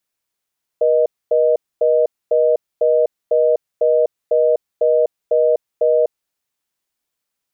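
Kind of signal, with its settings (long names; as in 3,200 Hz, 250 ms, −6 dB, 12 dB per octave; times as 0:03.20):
call progress tone reorder tone, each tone −14 dBFS 5.45 s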